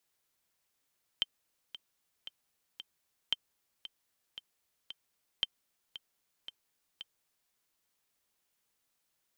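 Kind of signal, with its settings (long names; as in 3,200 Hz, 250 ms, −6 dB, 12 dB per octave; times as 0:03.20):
click track 114 BPM, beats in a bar 4, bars 3, 3,120 Hz, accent 14.5 dB −15.5 dBFS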